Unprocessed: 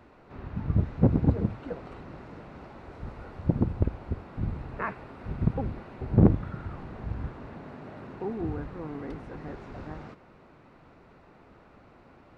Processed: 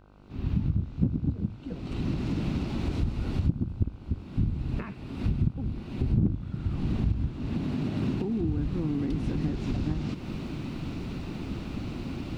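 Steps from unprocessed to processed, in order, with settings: recorder AGC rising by 39 dB/s; high-order bell 930 Hz -15 dB 2.6 oct; mains buzz 50 Hz, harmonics 31, -50 dBFS -4 dB/octave; trim -6.5 dB

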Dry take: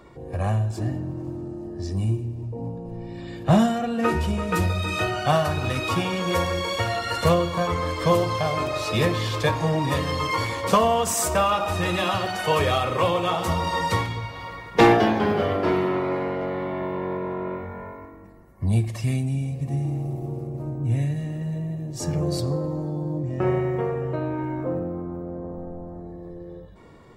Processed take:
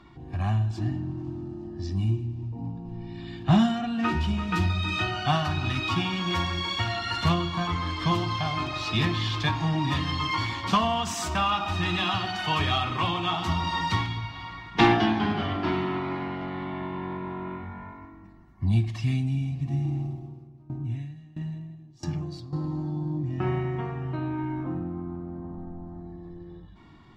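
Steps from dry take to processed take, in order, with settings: FFT filter 330 Hz 0 dB, 510 Hz -22 dB, 730 Hz -2 dB, 2.2 kHz -1 dB, 3.2 kHz +4 dB, 5.8 kHz -3 dB, 9.7 kHz -16 dB; 20.03–22.53 s: sawtooth tremolo in dB decaying 1.5 Hz, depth 21 dB; trim -1.5 dB

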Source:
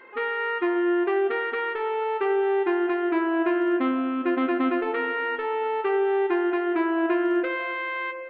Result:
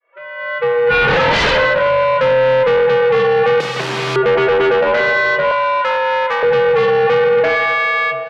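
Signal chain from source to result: fade-in on the opening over 1.55 s; valve stage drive 26 dB, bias 0.4; level rider gain up to 6.5 dB; feedback delay 581 ms, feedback 57%, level -21 dB; 0.84–1.41 s: reverb throw, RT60 1.3 s, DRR -10 dB; 3.60–4.16 s: integer overflow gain 25.5 dB; frequency shift +130 Hz; 5.51–6.43 s: high-pass 680 Hz 24 dB/octave; sine folder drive 9 dB, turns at -9.5 dBFS; low-pass 3.4 kHz 12 dB/octave

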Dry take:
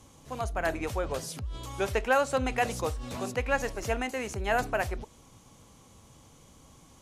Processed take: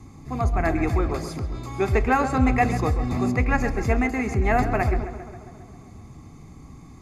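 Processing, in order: 1.06–1.89 s: bass shelf 200 Hz -7 dB; tape echo 133 ms, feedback 70%, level -10 dB, low-pass 3.1 kHz; reverberation RT60 1.0 s, pre-delay 3 ms, DRR 15 dB; trim -3 dB

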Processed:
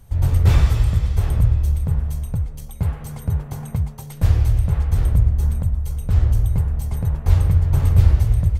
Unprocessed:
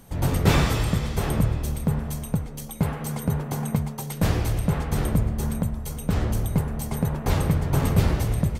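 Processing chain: resonant low shelf 130 Hz +13.5 dB, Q 1.5; trim -5.5 dB

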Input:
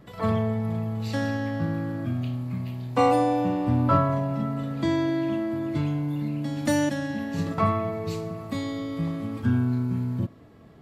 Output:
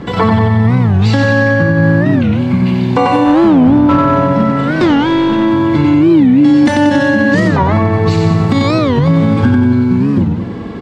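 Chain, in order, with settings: compression 5:1, threshold -32 dBFS, peak gain reduction 14.5 dB; peaking EQ 130 Hz -5.5 dB 0.57 oct; comb of notches 630 Hz; 3.25–5.43 s: hard clipper -32 dBFS, distortion -21 dB; distance through air 92 m; feedback delay 92 ms, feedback 58%, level -4 dB; loudness maximiser +27.5 dB; warped record 45 rpm, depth 250 cents; trim -1 dB

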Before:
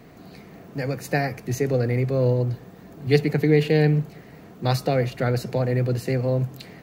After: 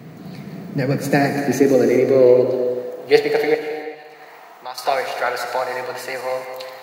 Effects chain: backward echo that repeats 109 ms, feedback 49%, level -10 dB; 3.54–4.78 s: compression 16:1, threshold -31 dBFS, peak gain reduction 18.5 dB; high-pass sweep 140 Hz -> 890 Hz, 0.25–4.13 s; gated-style reverb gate 420 ms flat, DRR 6 dB; trim +5 dB

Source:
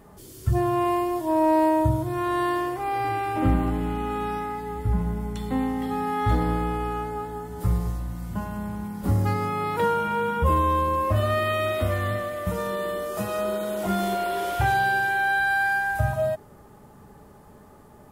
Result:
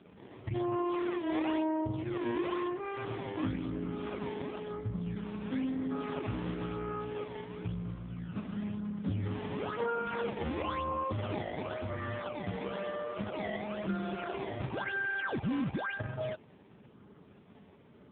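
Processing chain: peaking EQ 780 Hz -6.5 dB 0.37 oct, from 0.82 s -14.5 dB; compression 2.5:1, threshold -27 dBFS, peak gain reduction 7.5 dB; decimation with a swept rate 19×, swing 160% 0.98 Hz; trim -3 dB; AMR-NB 5.15 kbps 8 kHz

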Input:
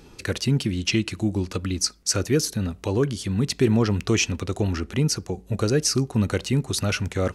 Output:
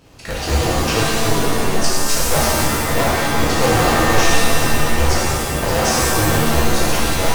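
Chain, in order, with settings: cycle switcher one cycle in 2, inverted; pitch-shifted reverb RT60 1.9 s, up +7 st, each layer -2 dB, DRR -7 dB; trim -4 dB

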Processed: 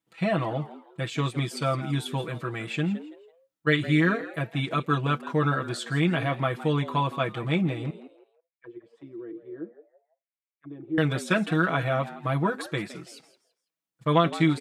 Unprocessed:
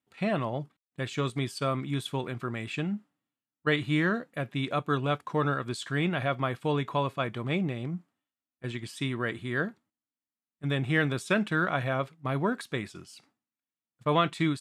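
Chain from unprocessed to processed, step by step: 7.90–10.98 s: auto-wah 330–2300 Hz, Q 7.2, down, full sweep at -30 dBFS; comb 6.1 ms, depth 93%; frequency-shifting echo 165 ms, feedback 30%, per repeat +110 Hz, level -15.5 dB

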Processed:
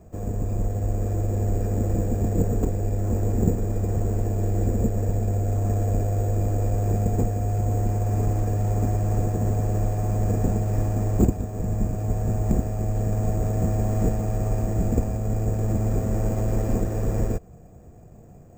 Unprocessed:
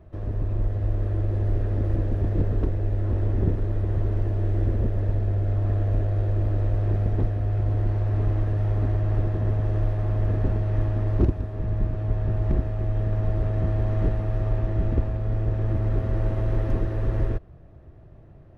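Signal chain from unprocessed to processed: small resonant body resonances 210/470/720/2400 Hz, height 11 dB, ringing for 40 ms; careless resampling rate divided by 6×, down none, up hold; trim -1.5 dB

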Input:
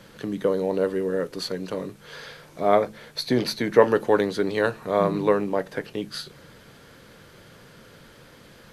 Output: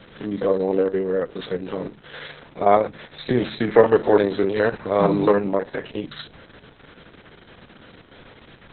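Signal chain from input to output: spectrogram pixelated in time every 50 ms; trim +5 dB; Opus 6 kbps 48 kHz

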